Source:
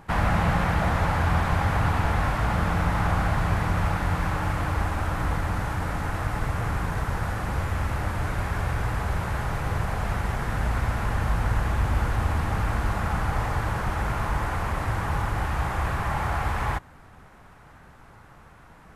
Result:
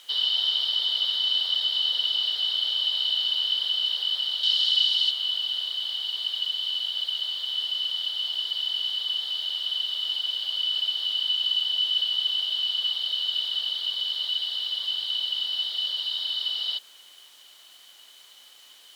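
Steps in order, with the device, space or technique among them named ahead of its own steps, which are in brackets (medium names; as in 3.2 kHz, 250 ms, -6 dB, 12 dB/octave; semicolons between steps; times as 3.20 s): split-band scrambled radio (four frequency bands reordered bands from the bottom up 3412; band-pass 350–3200 Hz; white noise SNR 25 dB); frequency weighting A; 4.43–5.11 s: peaking EQ 5.1 kHz +10 dB 1.5 oct; trim -1 dB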